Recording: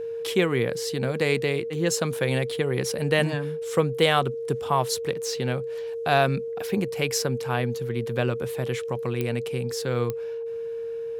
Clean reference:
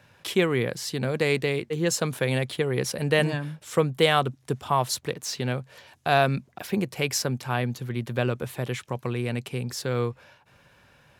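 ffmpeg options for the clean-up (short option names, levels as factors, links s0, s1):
-af "adeclick=t=4,bandreject=f=460:w=30"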